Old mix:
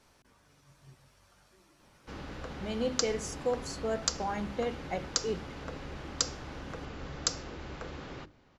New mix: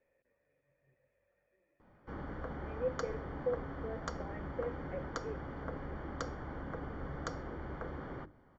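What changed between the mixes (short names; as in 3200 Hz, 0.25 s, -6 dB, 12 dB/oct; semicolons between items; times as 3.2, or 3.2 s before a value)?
speech: add vocal tract filter e; background: add polynomial smoothing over 41 samples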